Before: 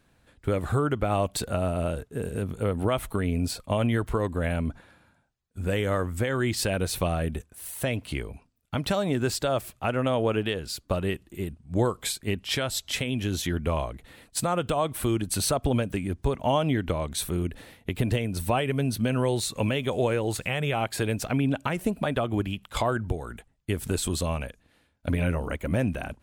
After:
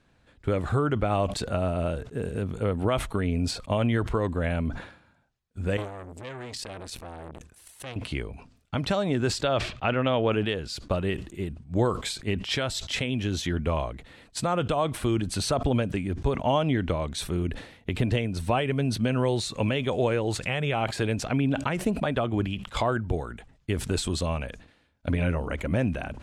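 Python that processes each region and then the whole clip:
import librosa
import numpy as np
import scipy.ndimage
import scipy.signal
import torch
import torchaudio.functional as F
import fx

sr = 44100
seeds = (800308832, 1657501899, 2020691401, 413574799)

y = fx.chain(x, sr, fx.high_shelf(hz=6300.0, db=6.0),
    fx.level_steps(step_db=11),
    fx.transformer_sat(knee_hz=1400.0), at=(5.77, 7.96))
y = fx.chain(y, sr, fx.lowpass(hz=4200.0, slope=12),
    fx.peak_eq(hz=3200.0, db=5.5, octaves=1.8), at=(9.43, 10.32))
y = scipy.signal.sosfilt(scipy.signal.butter(2, 6500.0, 'lowpass', fs=sr, output='sos'), y)
y = fx.sustainer(y, sr, db_per_s=100.0)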